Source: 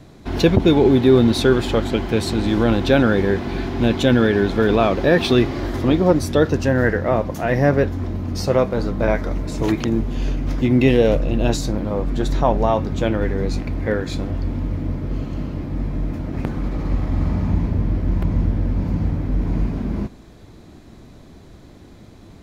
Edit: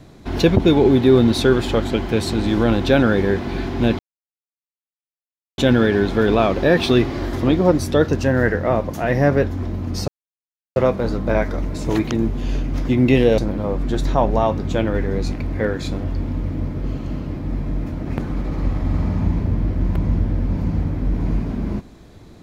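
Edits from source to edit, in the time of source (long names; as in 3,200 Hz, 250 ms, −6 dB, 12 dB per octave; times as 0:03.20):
0:03.99: splice in silence 1.59 s
0:08.49: splice in silence 0.68 s
0:11.11–0:11.65: remove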